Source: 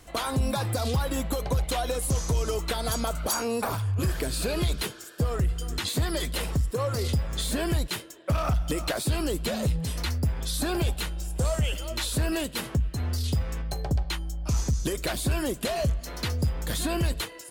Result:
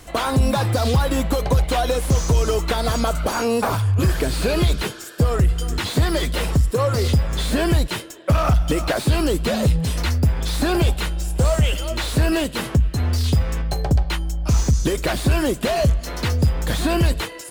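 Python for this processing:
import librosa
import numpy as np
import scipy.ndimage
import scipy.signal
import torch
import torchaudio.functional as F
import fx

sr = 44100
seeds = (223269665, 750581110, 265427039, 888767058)

y = fx.slew_limit(x, sr, full_power_hz=75.0)
y = y * librosa.db_to_amplitude(8.5)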